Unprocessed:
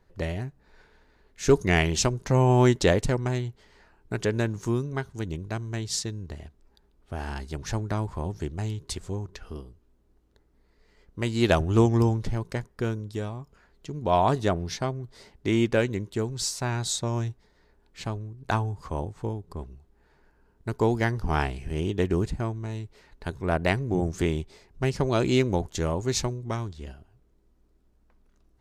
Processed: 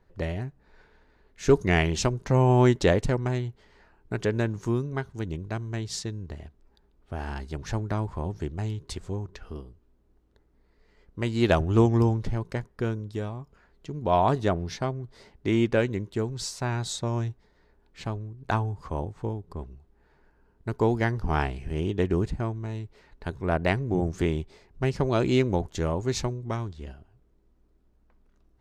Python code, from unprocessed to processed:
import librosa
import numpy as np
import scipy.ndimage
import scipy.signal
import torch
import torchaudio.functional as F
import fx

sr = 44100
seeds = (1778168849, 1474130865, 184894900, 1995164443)

y = fx.high_shelf(x, sr, hz=4900.0, db=-8.5)